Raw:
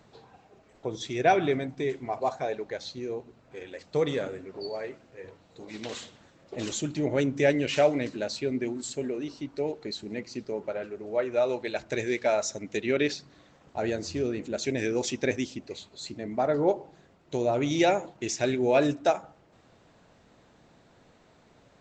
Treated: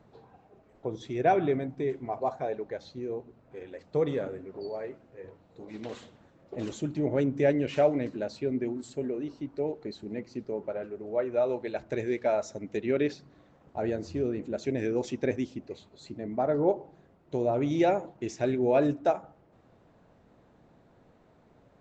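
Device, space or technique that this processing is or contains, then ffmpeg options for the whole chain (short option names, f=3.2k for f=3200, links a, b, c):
through cloth: -af "highshelf=f=2k:g=-14.5"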